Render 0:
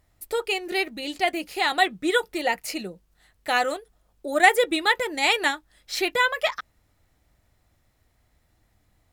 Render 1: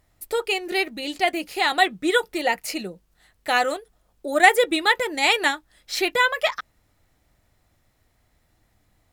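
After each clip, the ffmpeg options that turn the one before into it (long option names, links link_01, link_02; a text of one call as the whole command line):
ffmpeg -i in.wav -af "equalizer=frequency=61:width=1.1:gain=-3.5,volume=2dB" out.wav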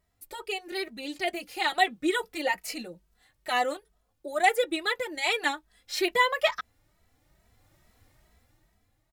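ffmpeg -i in.wav -filter_complex "[0:a]dynaudnorm=framelen=230:gausssize=9:maxgain=15dB,asplit=2[link_01][link_02];[link_02]adelay=2.7,afreqshift=2.3[link_03];[link_01][link_03]amix=inputs=2:normalize=1,volume=-6.5dB" out.wav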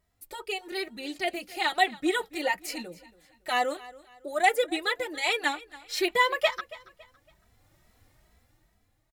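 ffmpeg -i in.wav -af "aecho=1:1:279|558|837:0.106|0.036|0.0122" out.wav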